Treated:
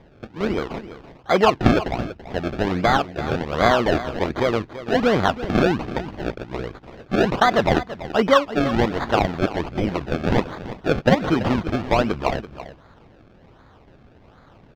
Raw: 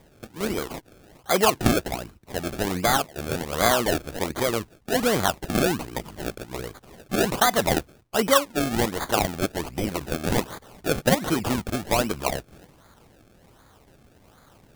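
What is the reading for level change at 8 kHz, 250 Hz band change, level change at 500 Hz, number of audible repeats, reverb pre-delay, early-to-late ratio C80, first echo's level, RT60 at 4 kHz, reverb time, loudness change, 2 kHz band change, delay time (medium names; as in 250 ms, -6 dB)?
-13.5 dB, +5.0 dB, +4.5 dB, 1, no reverb, no reverb, -14.0 dB, no reverb, no reverb, +3.5 dB, +3.0 dB, 334 ms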